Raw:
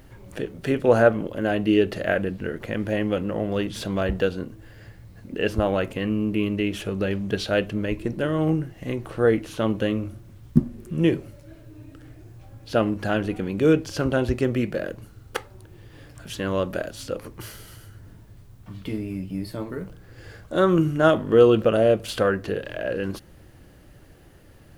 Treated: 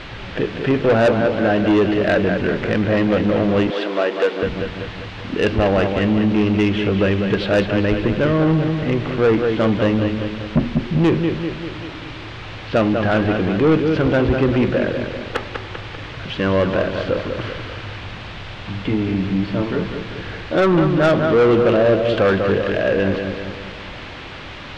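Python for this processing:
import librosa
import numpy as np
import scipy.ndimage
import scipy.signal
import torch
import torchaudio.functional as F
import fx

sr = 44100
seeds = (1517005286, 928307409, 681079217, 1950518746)

p1 = fx.rider(x, sr, range_db=4, speed_s=0.5)
p2 = x + F.gain(torch.from_numpy(p1), -1.5).numpy()
p3 = fx.dmg_noise_colour(p2, sr, seeds[0], colour='white', level_db=-32.0)
p4 = scipy.signal.sosfilt(scipy.signal.butter(4, 3300.0, 'lowpass', fs=sr, output='sos'), p3)
p5 = p4 + fx.echo_feedback(p4, sr, ms=196, feedback_pct=51, wet_db=-8, dry=0)
p6 = 10.0 ** (-13.5 / 20.0) * np.tanh(p5 / 10.0 ** (-13.5 / 20.0))
p7 = fx.highpass(p6, sr, hz=310.0, slope=24, at=(3.7, 4.43))
y = F.gain(torch.from_numpy(p7), 3.5).numpy()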